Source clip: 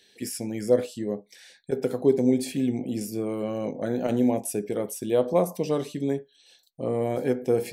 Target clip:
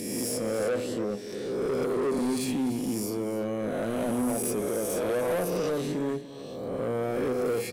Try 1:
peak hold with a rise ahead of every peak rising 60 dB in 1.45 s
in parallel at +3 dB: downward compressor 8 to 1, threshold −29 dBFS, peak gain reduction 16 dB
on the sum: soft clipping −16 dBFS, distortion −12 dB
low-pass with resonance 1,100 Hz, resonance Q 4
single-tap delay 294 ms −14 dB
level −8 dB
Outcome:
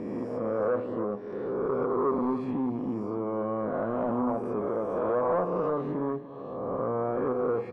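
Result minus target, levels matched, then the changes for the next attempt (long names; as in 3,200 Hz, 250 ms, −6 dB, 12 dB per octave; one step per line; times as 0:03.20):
downward compressor: peak gain reduction +9.5 dB; 1,000 Hz band +5.5 dB
change: downward compressor 8 to 1, threshold −18 dBFS, peak gain reduction 6 dB
remove: low-pass with resonance 1,100 Hz, resonance Q 4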